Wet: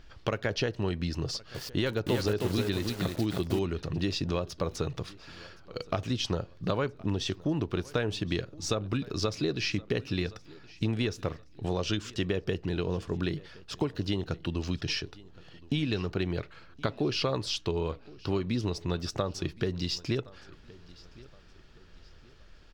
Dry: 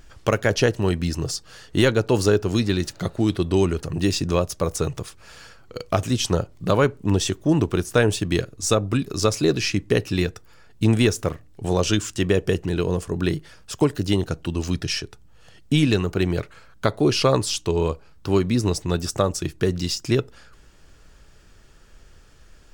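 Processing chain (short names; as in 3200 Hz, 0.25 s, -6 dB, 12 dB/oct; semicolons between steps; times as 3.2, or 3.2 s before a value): resonant high shelf 6100 Hz -11.5 dB, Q 1.5; compressor 4:1, threshold -22 dBFS, peak gain reduction 8.5 dB; feedback echo 1.069 s, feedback 36%, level -22 dB; 1.23–3.59 lo-fi delay 0.315 s, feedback 35%, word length 6-bit, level -3 dB; gain -4.5 dB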